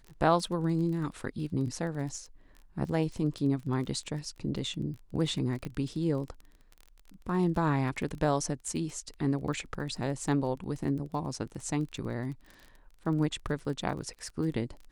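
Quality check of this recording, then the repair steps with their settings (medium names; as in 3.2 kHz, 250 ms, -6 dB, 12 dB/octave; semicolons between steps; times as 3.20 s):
crackle 23 per s -38 dBFS
5.65 s: pop -24 dBFS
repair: de-click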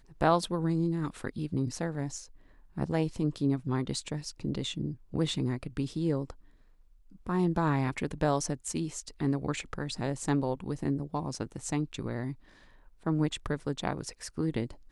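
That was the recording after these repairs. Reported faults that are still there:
5.65 s: pop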